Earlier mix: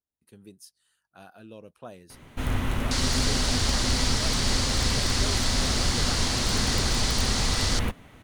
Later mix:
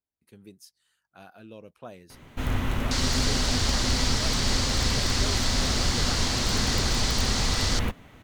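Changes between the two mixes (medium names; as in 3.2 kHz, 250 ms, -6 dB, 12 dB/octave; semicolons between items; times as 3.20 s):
speech: add peaking EQ 2.2 kHz +6 dB 0.21 oct; master: add peaking EQ 9.5 kHz -7 dB 0.25 oct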